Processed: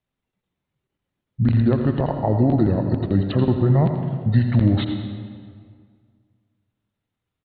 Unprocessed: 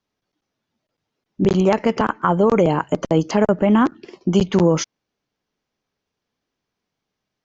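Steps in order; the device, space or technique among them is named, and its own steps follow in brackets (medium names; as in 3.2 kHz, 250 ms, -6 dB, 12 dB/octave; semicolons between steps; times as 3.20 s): monster voice (pitch shift -8.5 st; bass shelf 170 Hz +6 dB; delay 83 ms -11.5 dB; reverberation RT60 1.9 s, pre-delay 79 ms, DRR 6.5 dB); trim -5 dB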